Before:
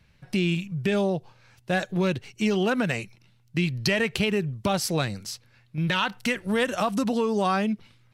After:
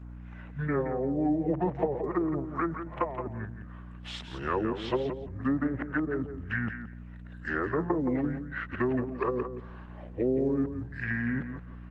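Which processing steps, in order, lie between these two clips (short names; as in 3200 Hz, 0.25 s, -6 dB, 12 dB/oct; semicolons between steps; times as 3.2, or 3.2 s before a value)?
whole clip reversed; spectral gain 5.57–5.91, 1600–12000 Hz +12 dB; three-band isolator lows -20 dB, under 420 Hz, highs -18 dB, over 3200 Hz; in parallel at +3 dB: compressor 16:1, threshold -36 dBFS, peak gain reduction 18 dB; on the sum: wide varispeed 0.683×; treble ducked by the level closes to 310 Hz, closed at -21.5 dBFS; hum 60 Hz, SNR 11 dB; on a send: feedback echo 0.172 s, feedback 16%, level -9 dB; on the sum: gain +1 dB; Opus 20 kbps 48000 Hz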